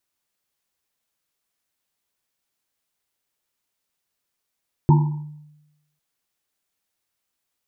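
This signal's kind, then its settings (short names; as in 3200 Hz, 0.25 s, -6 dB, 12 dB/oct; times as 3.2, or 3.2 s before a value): Risset drum, pitch 150 Hz, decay 0.98 s, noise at 910 Hz, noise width 130 Hz, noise 20%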